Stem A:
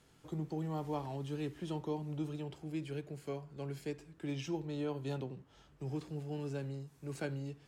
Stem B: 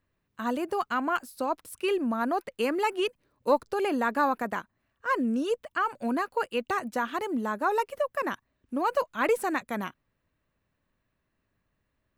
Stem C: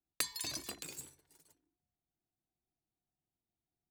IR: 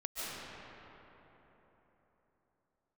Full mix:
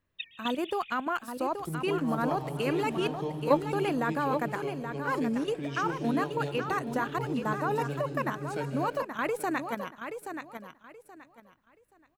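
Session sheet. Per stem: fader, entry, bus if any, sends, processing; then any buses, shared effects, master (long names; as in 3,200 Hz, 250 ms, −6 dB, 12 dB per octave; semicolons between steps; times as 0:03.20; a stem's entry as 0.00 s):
+0.5 dB, 1.35 s, send −5.5 dB, echo send −11 dB, no processing
+1.0 dB, 0.00 s, no send, echo send −8 dB, output level in coarse steps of 10 dB
+0.5 dB, 0.00 s, send −15.5 dB, no echo send, three sine waves on the formant tracks; Butterworth high-pass 2,600 Hz 36 dB per octave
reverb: on, RT60 3.9 s, pre-delay 105 ms
echo: repeating echo 827 ms, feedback 24%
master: no processing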